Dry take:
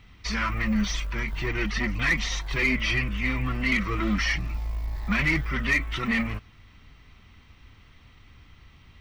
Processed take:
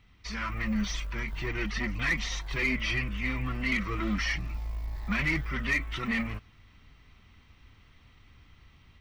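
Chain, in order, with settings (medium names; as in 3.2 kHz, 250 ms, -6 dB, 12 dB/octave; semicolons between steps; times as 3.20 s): level rider gain up to 4 dB; trim -8.5 dB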